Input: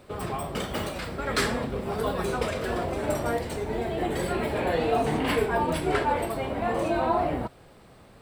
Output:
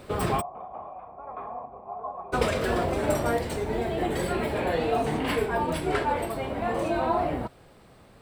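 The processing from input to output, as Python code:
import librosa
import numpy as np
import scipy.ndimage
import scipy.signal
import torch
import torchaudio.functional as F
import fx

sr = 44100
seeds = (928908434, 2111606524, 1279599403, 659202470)

y = fx.formant_cascade(x, sr, vowel='a', at=(0.4, 2.32), fade=0.02)
y = fx.rider(y, sr, range_db=10, speed_s=2.0)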